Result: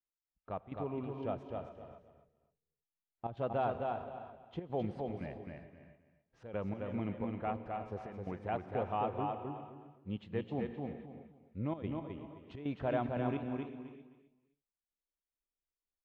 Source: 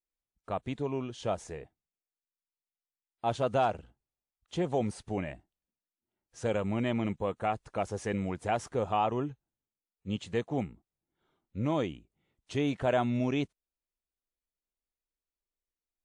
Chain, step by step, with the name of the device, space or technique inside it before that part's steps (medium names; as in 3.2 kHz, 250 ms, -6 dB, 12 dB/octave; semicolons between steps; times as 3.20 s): 1.50–3.35 s: tilt EQ -2 dB/octave; distance through air 370 m; trance gate with a delay (trance gate "x..xxx.xxxx.x" 147 bpm -12 dB; feedback delay 261 ms, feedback 24%, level -4 dB); gated-style reverb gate 410 ms rising, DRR 10 dB; trim -5.5 dB